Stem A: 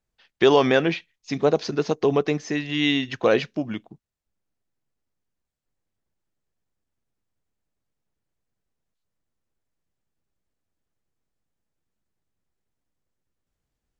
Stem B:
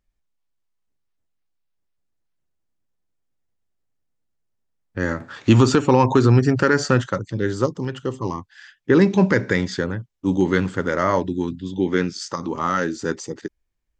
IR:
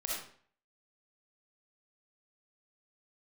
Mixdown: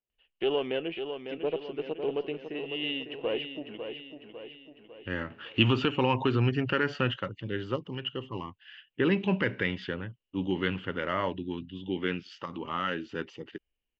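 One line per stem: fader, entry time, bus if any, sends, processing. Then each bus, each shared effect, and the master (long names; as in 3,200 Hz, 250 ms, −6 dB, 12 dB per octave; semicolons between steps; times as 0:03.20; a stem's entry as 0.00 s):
−10.0 dB, 0.00 s, no send, echo send −8 dB, one-sided soft clipper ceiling −18 dBFS; parametric band 430 Hz +14.5 dB 1.8 octaves
+1.5 dB, 0.10 s, no send, no echo send, no processing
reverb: not used
echo: repeating echo 551 ms, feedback 52%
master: transistor ladder low-pass 3,000 Hz, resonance 85%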